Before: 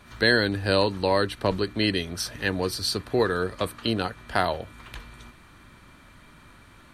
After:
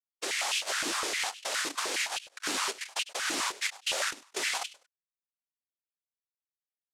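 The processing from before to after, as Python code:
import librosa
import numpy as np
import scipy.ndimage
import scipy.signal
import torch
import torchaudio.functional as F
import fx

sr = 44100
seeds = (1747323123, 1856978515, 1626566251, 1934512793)

p1 = fx.chord_vocoder(x, sr, chord='bare fifth', root=55)
p2 = scipy.signal.sosfilt(scipy.signal.butter(2, 3900.0, 'lowpass', fs=sr, output='sos'), p1)
p3 = fx.quant_dither(p2, sr, seeds[0], bits=6, dither='none')
p4 = 10.0 ** (-24.5 / 20.0) * np.tanh(p3 / 10.0 ** (-24.5 / 20.0))
p5 = fx.noise_vocoder(p4, sr, seeds[1], bands=1)
p6 = fx.over_compress(p5, sr, threshold_db=-30.0, ratio=-1.0)
p7 = p6 + fx.echo_feedback(p6, sr, ms=100, feedback_pct=23, wet_db=-17.5, dry=0)
p8 = fx.filter_held_highpass(p7, sr, hz=9.7, low_hz=290.0, high_hz=2800.0)
y = p8 * librosa.db_to_amplitude(-3.5)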